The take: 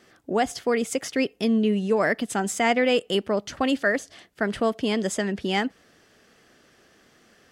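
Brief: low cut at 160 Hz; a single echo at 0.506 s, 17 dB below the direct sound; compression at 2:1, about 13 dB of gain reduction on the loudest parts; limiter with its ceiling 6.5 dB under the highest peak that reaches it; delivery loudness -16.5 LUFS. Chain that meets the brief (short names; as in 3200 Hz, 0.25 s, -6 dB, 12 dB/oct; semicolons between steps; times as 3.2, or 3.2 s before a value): HPF 160 Hz; compressor 2:1, threshold -42 dBFS; limiter -28 dBFS; echo 0.506 s -17 dB; gain +22 dB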